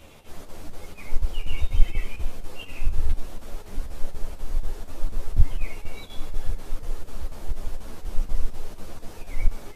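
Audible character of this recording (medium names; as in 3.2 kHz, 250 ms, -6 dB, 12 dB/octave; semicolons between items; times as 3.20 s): chopped level 4.1 Hz, depth 60%, duty 80%; a shimmering, thickened sound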